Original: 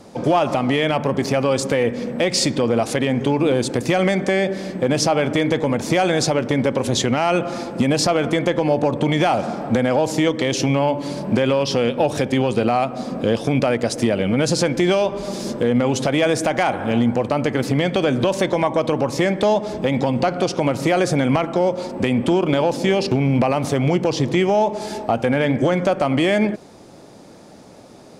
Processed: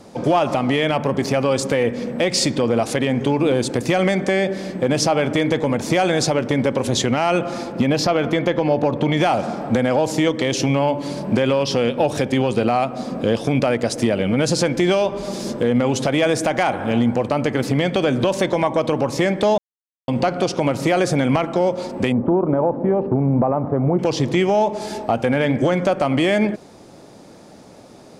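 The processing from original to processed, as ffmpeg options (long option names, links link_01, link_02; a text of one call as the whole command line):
ffmpeg -i in.wav -filter_complex "[0:a]asettb=1/sr,asplit=3[link_01][link_02][link_03];[link_01]atrim=end=7.724[link_04];[link_02]atrim=start=7.72:end=9.17,asetpts=PTS-STARTPTS,afade=type=in:duration=0.004:curve=qsin,afade=type=out:start_time=1.446:duration=0.004:curve=qsin,equalizer=frequency=8600:width_type=o:width=0.66:gain=-11.5[link_05];[link_03]atrim=start=9.166[link_06];[link_04][link_05]acrossfade=duration=0.004:curve1=hsin:curve2=qsin[link_07];[link_07][link_06]acrossfade=duration=0.004:curve1=qsin:curve2=hsin,asettb=1/sr,asplit=3[link_08][link_09][link_10];[link_08]atrim=end=22.124[link_11];[link_09]atrim=start=22.12:end=23.99,asetpts=PTS-STARTPTS,afade=type=in:duration=0.004:curve=qsin,afade=type=out:start_time=1.866:duration=0.004:curve=qsin,lowpass=frequency=1200:width=0.5412,lowpass=frequency=1200:width=1.3066[link_12];[link_10]atrim=start=23.986[link_13];[link_11][link_12]acrossfade=duration=0.004:curve1=hsin:curve2=qsin[link_14];[link_14][link_13]acrossfade=duration=0.004:curve1=qsin:curve2=hsin,asplit=3[link_15][link_16][link_17];[link_15]atrim=end=19.58,asetpts=PTS-STARTPTS,afade=type=out:start_time=19.576:duration=0.004:curve=hsin[link_18];[link_16]atrim=start=19.58:end=20.08,asetpts=PTS-STARTPTS,volume=0[link_19];[link_17]atrim=start=20.08,asetpts=PTS-STARTPTS,afade=type=in:duration=0.004:curve=hsin[link_20];[link_18][link_19][link_20]concat=n=3:v=0:a=1" out.wav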